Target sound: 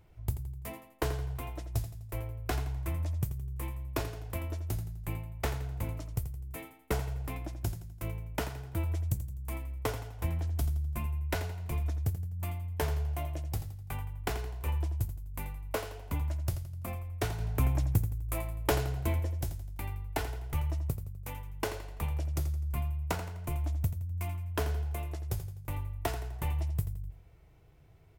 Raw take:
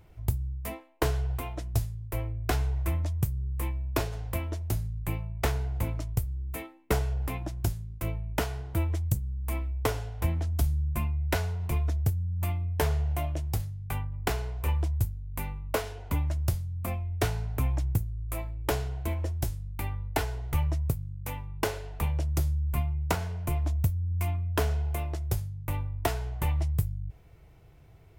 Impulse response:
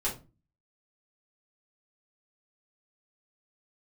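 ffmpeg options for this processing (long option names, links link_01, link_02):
-filter_complex "[0:a]asettb=1/sr,asplit=3[link_01][link_02][link_03];[link_01]atrim=end=17.404[link_04];[link_02]atrim=start=17.4:end=19.2,asetpts=PTS-STARTPTS,afade=type=in:duration=0.004:curve=qsin,afade=type=out:start_time=1.796:duration=0.004:curve=qsin,acontrast=39[link_05];[link_03]atrim=start=19.196[link_06];[link_04][link_05]acrossfade=duration=0.004:curve1=hsin:curve2=qsin[link_07];[link_07][link_06]acrossfade=duration=0.004:curve1=qsin:curve2=hsin,aecho=1:1:84|168|252|336:0.266|0.114|0.0492|0.0212,volume=-5dB"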